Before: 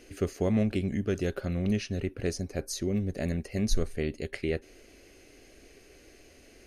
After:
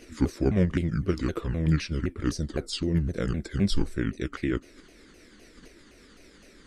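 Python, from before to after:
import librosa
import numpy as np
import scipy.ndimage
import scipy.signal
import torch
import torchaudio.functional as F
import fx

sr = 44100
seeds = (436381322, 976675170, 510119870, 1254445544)

p1 = fx.pitch_ramps(x, sr, semitones=-7.0, every_ms=257)
p2 = fx.level_steps(p1, sr, step_db=9)
y = p1 + (p2 * librosa.db_to_amplitude(0.0))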